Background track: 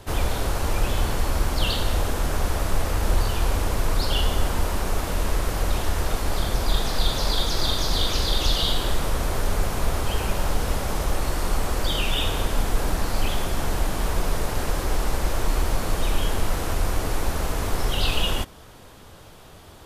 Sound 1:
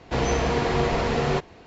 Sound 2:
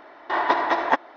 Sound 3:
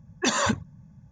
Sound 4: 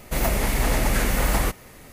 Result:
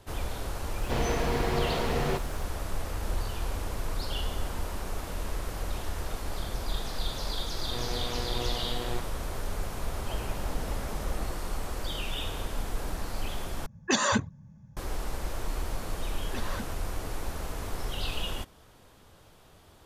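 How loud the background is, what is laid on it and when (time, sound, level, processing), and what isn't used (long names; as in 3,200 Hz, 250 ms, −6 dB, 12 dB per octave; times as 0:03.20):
background track −10 dB
0:00.78: mix in 1 −6 dB + background noise pink −49 dBFS
0:07.61: mix in 1 −12 dB + phases set to zero 121 Hz
0:09.86: mix in 4 −15.5 dB + low-pass filter 1,200 Hz
0:13.66: overwrite with 3 −1.5 dB
0:16.10: mix in 3 −14 dB + variable-slope delta modulation 32 kbit/s
not used: 2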